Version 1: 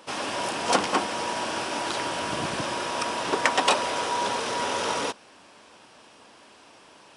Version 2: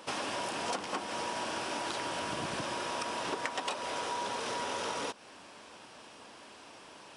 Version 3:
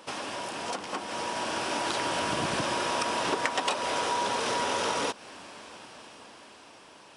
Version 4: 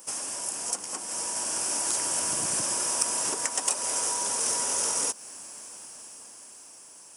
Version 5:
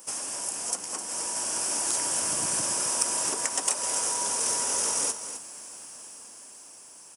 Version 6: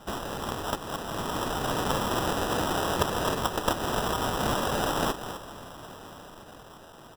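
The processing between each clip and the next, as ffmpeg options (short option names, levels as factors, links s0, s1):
-af "acompressor=threshold=0.0224:ratio=6"
-af "dynaudnorm=f=220:g=13:m=2.24"
-af "aexciter=amount=10.3:drive=8:freq=5800,volume=0.422"
-af "aecho=1:1:259:0.299"
-af "acrusher=samples=20:mix=1:aa=0.000001"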